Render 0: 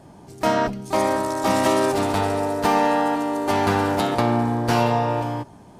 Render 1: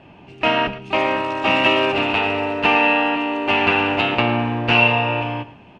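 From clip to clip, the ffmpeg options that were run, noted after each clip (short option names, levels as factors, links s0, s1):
-af "lowpass=f=2700:t=q:w=13,bandreject=f=50:t=h:w=6,bandreject=f=100:t=h:w=6,bandreject=f=150:t=h:w=6,bandreject=f=200:t=h:w=6,aecho=1:1:112:0.158"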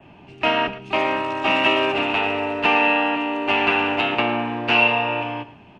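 -filter_complex "[0:a]bandreject=f=510:w=12,adynamicequalizer=threshold=0.00891:dfrequency=4600:dqfactor=2.4:tfrequency=4600:tqfactor=2.4:attack=5:release=100:ratio=0.375:range=2:mode=cutabove:tftype=bell,acrossover=split=210|480|1400[s0][s1][s2][s3];[s0]acompressor=threshold=0.0126:ratio=6[s4];[s4][s1][s2][s3]amix=inputs=4:normalize=0,volume=0.841"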